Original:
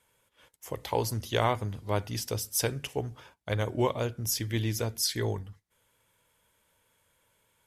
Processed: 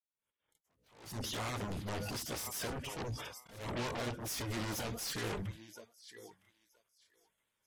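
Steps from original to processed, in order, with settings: bin magnitudes rounded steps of 30 dB; expander -58 dBFS; on a send: thinning echo 0.961 s, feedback 16%, high-pass 950 Hz, level -21 dB; on the sum: limiter -22.5 dBFS, peak gain reduction 11 dB; in parallel at -8.5 dB: sine folder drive 18 dB, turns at -22.5 dBFS; on the sum: grains 0.182 s, grains 13/s, spray 19 ms, pitch spread up and down by 0 st; attack slew limiter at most 100 dB/s; gain -5.5 dB

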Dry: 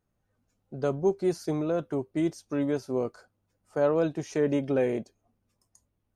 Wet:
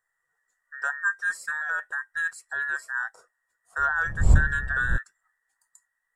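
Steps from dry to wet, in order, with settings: band inversion scrambler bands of 2000 Hz; 3.78–4.96 wind noise 84 Hz -20 dBFS; graphic EQ 250/1000/4000/8000 Hz -8/+5/-7/+11 dB; gain -3 dB

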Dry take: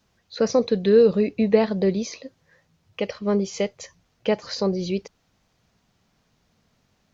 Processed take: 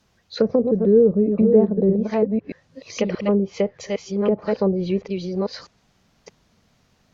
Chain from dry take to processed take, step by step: reverse delay 0.63 s, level -4.5 dB; treble ducked by the level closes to 450 Hz, closed at -17 dBFS; gain +3.5 dB

